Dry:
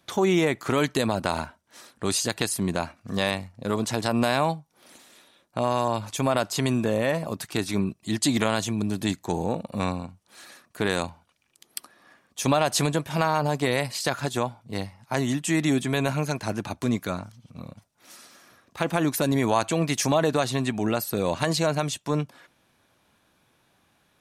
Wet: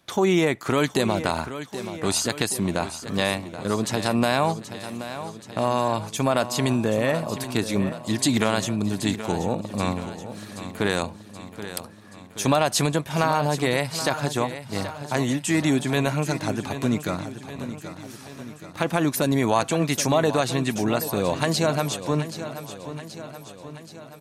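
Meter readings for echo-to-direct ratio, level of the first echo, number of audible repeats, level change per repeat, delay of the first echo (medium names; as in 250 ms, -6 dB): -10.0 dB, -12.0 dB, 5, -4.5 dB, 778 ms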